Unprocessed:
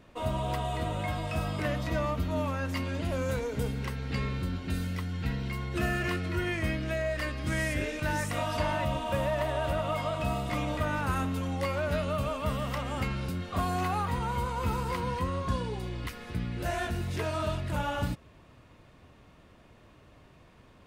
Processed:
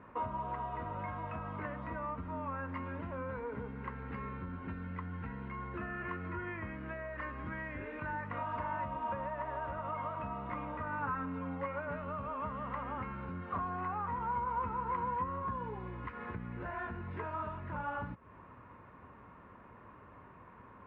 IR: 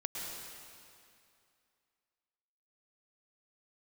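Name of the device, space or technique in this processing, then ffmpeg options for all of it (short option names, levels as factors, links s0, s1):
bass amplifier: -filter_complex "[0:a]acompressor=threshold=0.0112:ratio=5,highpass=72,equalizer=f=79:t=q:w=4:g=-4,equalizer=f=140:t=q:w=4:g=-7,equalizer=f=320:t=q:w=4:g=-4,equalizer=f=660:t=q:w=4:g=-6,equalizer=f=1000:t=q:w=4:g=9,equalizer=f=1400:t=q:w=4:g=3,lowpass=f=2000:w=0.5412,lowpass=f=2000:w=1.3066,asettb=1/sr,asplit=3[s0][s1][s2];[s0]atrim=end=10.984[s3];[s1]atrim=start=10.98:end=11.97,asetpts=PTS-STARTPTS,afade=t=in:d=0.004:c=qsin,afade=t=out:st=0.986:d=0.004:c=qsin,aecho=1:1:7:0.56,atrim=end_sample=43659[s4];[s2]atrim=start=11.966[s5];[s3][s4]acrossfade=d=0.004:c1=hsin:c2=qsin[s6];[s6][s5]acrossfade=d=0.004:c1=qsin:c2=hsin,volume=1.33"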